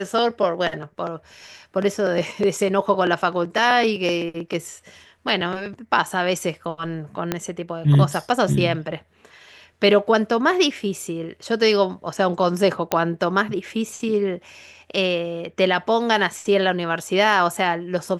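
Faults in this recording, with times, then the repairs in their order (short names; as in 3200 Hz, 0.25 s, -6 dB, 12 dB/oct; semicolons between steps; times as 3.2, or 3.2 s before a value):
7.32 pop -7 dBFS
12.92 pop -3 dBFS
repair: de-click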